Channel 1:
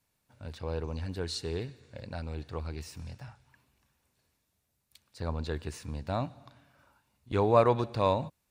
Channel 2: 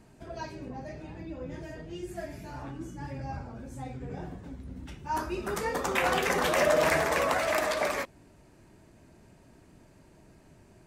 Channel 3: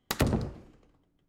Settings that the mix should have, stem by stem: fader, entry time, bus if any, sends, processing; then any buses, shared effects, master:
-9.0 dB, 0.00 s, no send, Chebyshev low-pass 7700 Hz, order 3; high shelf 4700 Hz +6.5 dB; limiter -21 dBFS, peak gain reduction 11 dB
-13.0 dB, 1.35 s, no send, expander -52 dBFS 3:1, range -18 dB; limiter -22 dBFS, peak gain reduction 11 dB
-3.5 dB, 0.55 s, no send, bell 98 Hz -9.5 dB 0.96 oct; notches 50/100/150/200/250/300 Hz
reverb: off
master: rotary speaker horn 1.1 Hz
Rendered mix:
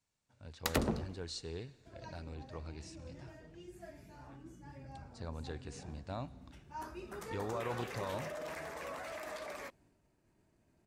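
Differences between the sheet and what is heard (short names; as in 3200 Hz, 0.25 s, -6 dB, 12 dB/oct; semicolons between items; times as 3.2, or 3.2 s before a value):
stem 2: entry 1.35 s -> 1.65 s; master: missing rotary speaker horn 1.1 Hz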